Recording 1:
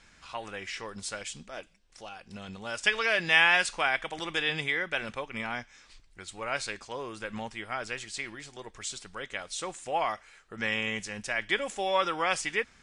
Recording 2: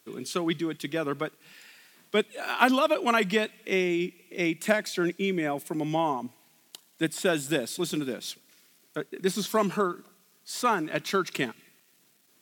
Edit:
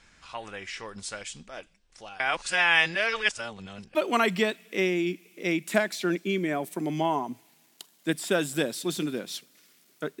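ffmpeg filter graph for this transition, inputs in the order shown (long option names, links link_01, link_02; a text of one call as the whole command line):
ffmpeg -i cue0.wav -i cue1.wav -filter_complex "[0:a]apad=whole_dur=10.2,atrim=end=10.2,asplit=2[link_01][link_02];[link_01]atrim=end=2.202[link_03];[link_02]atrim=start=2.198:end=3.952,asetpts=PTS-STARTPTS,areverse[link_04];[1:a]atrim=start=2.888:end=9.14[link_05];[link_03][link_04]acrossfade=duration=0.004:curve1=hsin:curve2=hsin[link_06];[link_06][link_05]acrossfade=duration=0.004:curve1=hsin:curve2=hsin" out.wav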